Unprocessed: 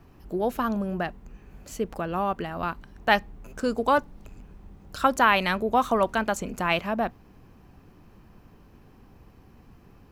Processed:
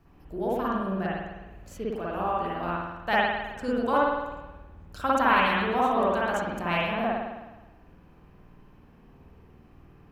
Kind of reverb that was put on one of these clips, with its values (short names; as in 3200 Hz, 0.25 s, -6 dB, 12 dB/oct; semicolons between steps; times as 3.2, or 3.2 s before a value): spring tank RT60 1.1 s, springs 52 ms, chirp 80 ms, DRR -7 dB; gain -8.5 dB